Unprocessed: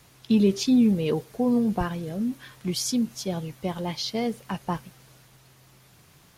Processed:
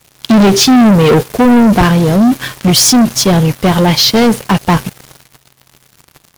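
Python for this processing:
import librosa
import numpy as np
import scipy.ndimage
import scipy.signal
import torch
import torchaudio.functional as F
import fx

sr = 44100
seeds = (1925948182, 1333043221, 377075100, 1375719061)

y = fx.leveller(x, sr, passes=5)
y = y * librosa.db_to_amplitude(7.0)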